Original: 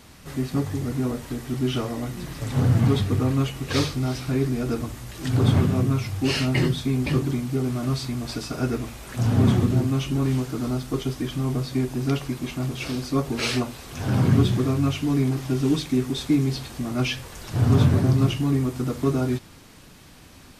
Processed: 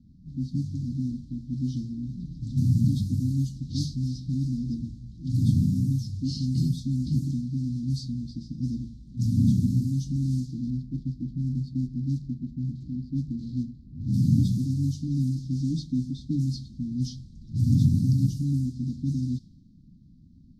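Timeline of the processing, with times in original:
0:10.70–0:14.14: running median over 15 samples
whole clip: inverse Chebyshev band-stop filter 380–2,700 Hz, stop band 40 dB; low-pass that shuts in the quiet parts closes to 1,200 Hz, open at −19.5 dBFS; drawn EQ curve 110 Hz 0 dB, 390 Hz +14 dB, 830 Hz −13 dB, 4,100 Hz +4 dB, 8,500 Hz −4 dB; level −4 dB

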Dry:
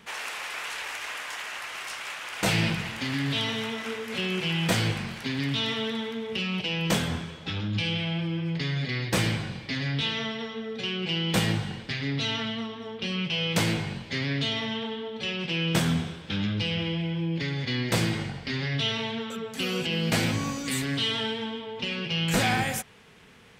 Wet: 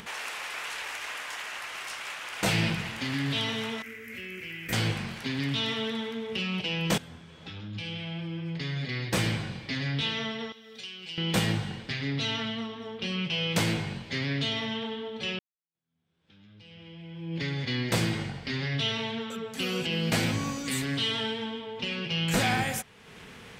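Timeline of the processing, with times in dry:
0:03.82–0:04.73: drawn EQ curve 100 Hz 0 dB, 160 Hz −19 dB, 250 Hz −6 dB, 500 Hz −14 dB, 870 Hz −25 dB, 2,100 Hz 0 dB, 3,600 Hz −20 dB, 6,400 Hz −11 dB, 9,500 Hz −10 dB, 15,000 Hz +6 dB
0:06.98–0:09.36: fade in, from −17.5 dB
0:10.52–0:11.18: first-order pre-emphasis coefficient 0.9
0:15.39–0:17.40: fade in exponential
whole clip: upward compression, threshold −36 dBFS; level −1.5 dB

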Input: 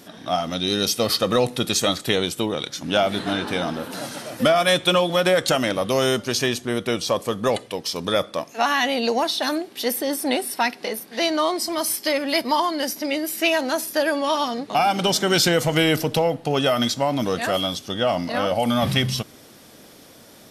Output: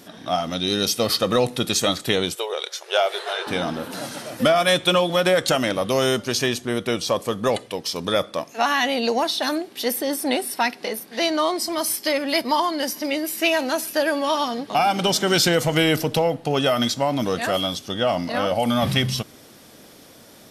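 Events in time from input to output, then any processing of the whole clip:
0:02.35–0:03.47: linear-phase brick-wall high-pass 360 Hz
0:12.46–0:15.55: delay with a high-pass on its return 142 ms, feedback 71%, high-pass 1,700 Hz, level −22 dB

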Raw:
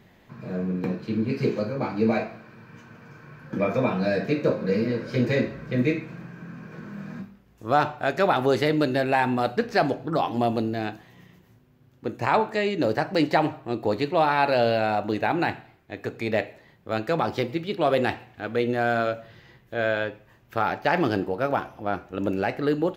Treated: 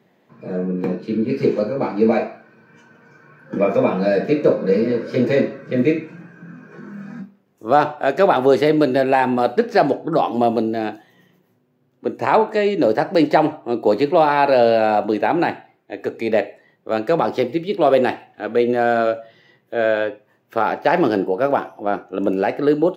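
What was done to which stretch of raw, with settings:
0:13.86–0:15.05: multiband upward and downward compressor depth 40%
whole clip: noise reduction from a noise print of the clip's start 8 dB; high-pass filter 130 Hz 24 dB per octave; parametric band 470 Hz +7 dB 2.1 octaves; level +1.5 dB

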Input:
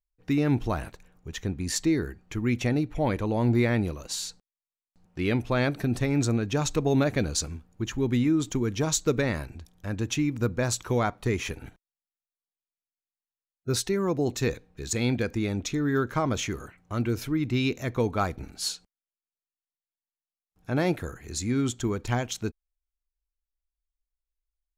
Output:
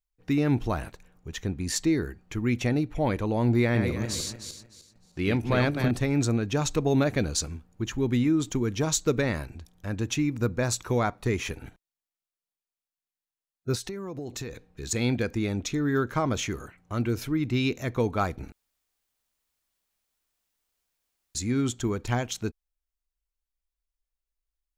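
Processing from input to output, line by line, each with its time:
0:03.60–0:05.91: feedback delay that plays each chunk backwards 152 ms, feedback 49%, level −5.5 dB
0:10.14–0:11.24: notch filter 3,100 Hz
0:13.75–0:14.83: downward compressor 12 to 1, threshold −31 dBFS
0:18.52–0:21.35: fill with room tone

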